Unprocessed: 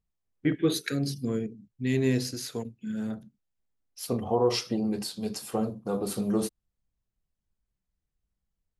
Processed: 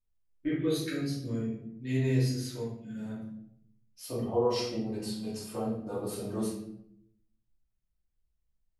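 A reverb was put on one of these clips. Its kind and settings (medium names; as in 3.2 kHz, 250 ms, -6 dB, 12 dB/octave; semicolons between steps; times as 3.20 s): simulated room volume 140 m³, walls mixed, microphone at 2.7 m; trim -14 dB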